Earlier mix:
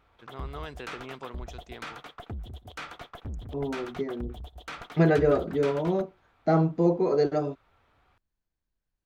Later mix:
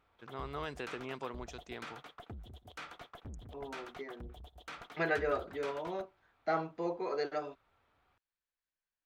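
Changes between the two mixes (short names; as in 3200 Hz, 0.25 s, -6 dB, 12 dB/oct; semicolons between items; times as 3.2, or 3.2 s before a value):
second voice: add band-pass 2200 Hz, Q 0.79; background -7.0 dB; master: add low shelf 120 Hz -5 dB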